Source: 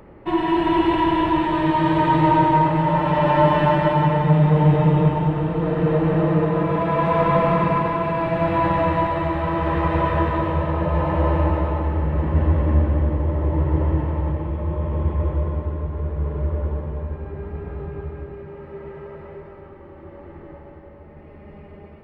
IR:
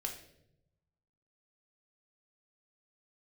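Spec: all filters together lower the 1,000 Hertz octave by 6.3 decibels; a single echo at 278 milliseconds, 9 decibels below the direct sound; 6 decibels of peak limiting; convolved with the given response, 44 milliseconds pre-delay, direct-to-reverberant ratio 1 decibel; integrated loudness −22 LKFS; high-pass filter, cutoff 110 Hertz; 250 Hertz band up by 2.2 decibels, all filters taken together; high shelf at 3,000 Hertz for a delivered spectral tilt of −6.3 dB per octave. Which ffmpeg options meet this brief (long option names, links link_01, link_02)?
-filter_complex "[0:a]highpass=110,equalizer=frequency=250:width_type=o:gain=5,equalizer=frequency=1000:width_type=o:gain=-7.5,highshelf=frequency=3000:gain=4,alimiter=limit=-10.5dB:level=0:latency=1,aecho=1:1:278:0.355,asplit=2[link_01][link_02];[1:a]atrim=start_sample=2205,adelay=44[link_03];[link_02][link_03]afir=irnorm=-1:irlink=0,volume=-1dB[link_04];[link_01][link_04]amix=inputs=2:normalize=0,volume=-3dB"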